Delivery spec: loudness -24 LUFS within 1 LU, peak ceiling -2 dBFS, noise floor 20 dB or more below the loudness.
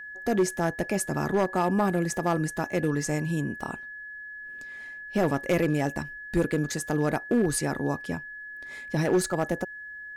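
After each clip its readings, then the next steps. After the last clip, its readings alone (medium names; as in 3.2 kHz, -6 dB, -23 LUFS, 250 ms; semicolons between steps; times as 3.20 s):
clipped samples 0.9%; clipping level -17.0 dBFS; steady tone 1.7 kHz; tone level -38 dBFS; loudness -27.5 LUFS; peak level -17.0 dBFS; loudness target -24.0 LUFS
-> clip repair -17 dBFS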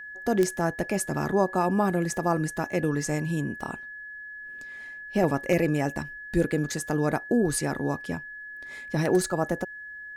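clipped samples 0.0%; steady tone 1.7 kHz; tone level -38 dBFS
-> band-stop 1.7 kHz, Q 30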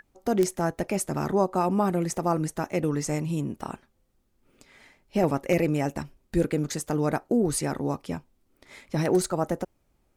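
steady tone not found; loudness -27.0 LUFS; peak level -8.0 dBFS; loudness target -24.0 LUFS
-> trim +3 dB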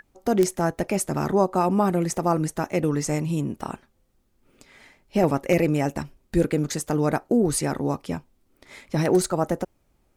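loudness -24.0 LUFS; peak level -5.0 dBFS; noise floor -66 dBFS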